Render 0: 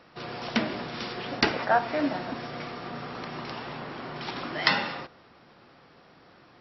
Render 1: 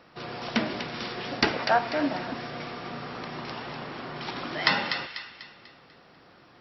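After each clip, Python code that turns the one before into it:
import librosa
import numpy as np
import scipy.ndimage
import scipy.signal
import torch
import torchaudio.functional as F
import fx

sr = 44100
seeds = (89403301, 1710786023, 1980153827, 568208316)

y = fx.echo_wet_highpass(x, sr, ms=246, feedback_pct=42, hz=1700.0, wet_db=-6.0)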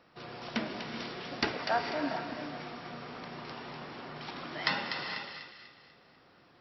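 y = fx.rev_gated(x, sr, seeds[0], gate_ms=480, shape='rising', drr_db=6.0)
y = F.gain(torch.from_numpy(y), -7.5).numpy()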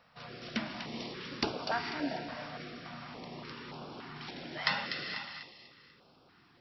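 y = fx.filter_held_notch(x, sr, hz=3.5, low_hz=340.0, high_hz=1900.0)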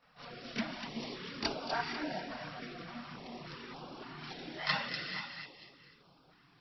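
y = fx.chorus_voices(x, sr, voices=6, hz=0.74, base_ms=26, depth_ms=4.1, mix_pct=70)
y = F.gain(torch.from_numpy(y), 1.0).numpy()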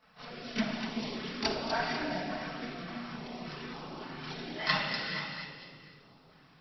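y = fx.room_shoebox(x, sr, seeds[1], volume_m3=2000.0, walls='mixed', distance_m=1.5)
y = F.gain(torch.from_numpy(y), 2.0).numpy()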